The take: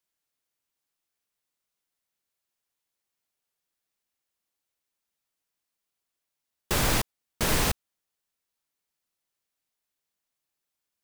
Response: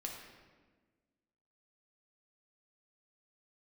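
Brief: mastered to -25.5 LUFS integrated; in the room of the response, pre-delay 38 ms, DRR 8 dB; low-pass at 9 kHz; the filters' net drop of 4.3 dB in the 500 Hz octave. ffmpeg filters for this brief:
-filter_complex "[0:a]lowpass=9000,equalizer=f=500:t=o:g=-5.5,asplit=2[s0][s1];[1:a]atrim=start_sample=2205,adelay=38[s2];[s1][s2]afir=irnorm=-1:irlink=0,volume=0.447[s3];[s0][s3]amix=inputs=2:normalize=0,volume=1.41"

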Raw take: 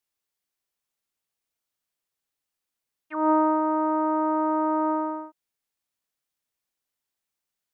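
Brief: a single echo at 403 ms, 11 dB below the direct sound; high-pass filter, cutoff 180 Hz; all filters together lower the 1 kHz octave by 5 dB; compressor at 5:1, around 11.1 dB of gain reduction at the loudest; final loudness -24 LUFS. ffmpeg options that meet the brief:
-af "highpass=180,equalizer=f=1000:t=o:g=-5.5,acompressor=threshold=0.0282:ratio=5,aecho=1:1:403:0.282,volume=3.98"

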